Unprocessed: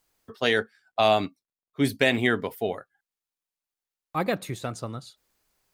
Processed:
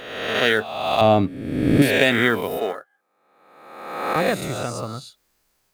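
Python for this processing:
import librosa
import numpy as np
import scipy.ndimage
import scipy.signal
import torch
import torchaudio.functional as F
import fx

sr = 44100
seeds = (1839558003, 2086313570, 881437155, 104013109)

p1 = fx.spec_swells(x, sr, rise_s=1.24)
p2 = fx.highpass(p1, sr, hz=290.0, slope=12, at=(2.57, 4.16))
p3 = fx.quant_float(p2, sr, bits=2)
p4 = p2 + F.gain(torch.from_numpy(p3), -6.0).numpy()
p5 = fx.tilt_eq(p4, sr, slope=-3.5, at=(1.01, 1.82))
y = F.gain(torch.from_numpy(p5), -1.5).numpy()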